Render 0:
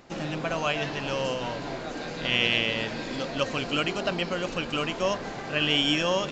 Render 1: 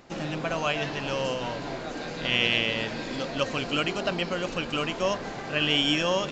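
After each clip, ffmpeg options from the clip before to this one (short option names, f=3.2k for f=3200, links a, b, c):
-af anull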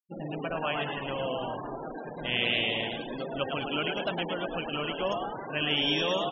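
-filter_complex "[0:a]flanger=delay=7.4:depth=6.4:regen=-88:speed=1.8:shape=triangular,asplit=9[a][b][c][d][e][f][g][h][i];[b]adelay=108,afreqshift=130,volume=-4.5dB[j];[c]adelay=216,afreqshift=260,volume=-9.5dB[k];[d]adelay=324,afreqshift=390,volume=-14.6dB[l];[e]adelay=432,afreqshift=520,volume=-19.6dB[m];[f]adelay=540,afreqshift=650,volume=-24.6dB[n];[g]adelay=648,afreqshift=780,volume=-29.7dB[o];[h]adelay=756,afreqshift=910,volume=-34.7dB[p];[i]adelay=864,afreqshift=1040,volume=-39.8dB[q];[a][j][k][l][m][n][o][p][q]amix=inputs=9:normalize=0,afftfilt=real='re*gte(hypot(re,im),0.0251)':imag='im*gte(hypot(re,im),0.0251)':win_size=1024:overlap=0.75"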